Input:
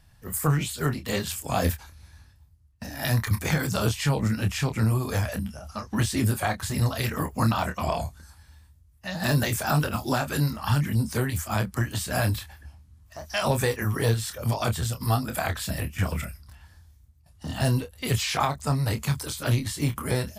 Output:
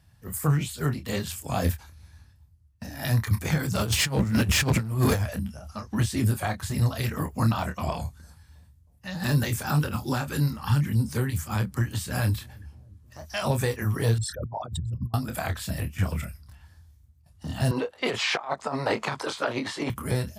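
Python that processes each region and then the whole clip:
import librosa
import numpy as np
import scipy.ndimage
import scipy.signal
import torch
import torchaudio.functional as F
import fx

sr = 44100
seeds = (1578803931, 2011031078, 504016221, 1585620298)

y = fx.chain(x, sr, fx.over_compress(threshold_db=-30.0, ratio=-0.5),
    fx.leveller(passes=3), at=(3.75, 5.22))
y = fx.chain(y, sr, fx.notch(hz=660.0, q=5.2),
    fx.echo_wet_lowpass(ms=316, feedback_pct=57, hz=450.0, wet_db=-23.5), at=(7.92, 13.19))
y = fx.chain(y, sr, fx.envelope_sharpen(power=3.0),
    fx.over_compress(threshold_db=-30.0, ratio=-0.5), at=(14.18, 15.14))
y = fx.chain(y, sr, fx.peak_eq(hz=790.0, db=13.0, octaves=2.9),
    fx.over_compress(threshold_db=-20.0, ratio=-0.5),
    fx.bandpass_edges(low_hz=330.0, high_hz=5400.0), at=(17.71, 19.9))
y = scipy.signal.sosfilt(scipy.signal.butter(2, 67.0, 'highpass', fs=sr, output='sos'), y)
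y = fx.low_shelf(y, sr, hz=200.0, db=6.5)
y = F.gain(torch.from_numpy(y), -3.5).numpy()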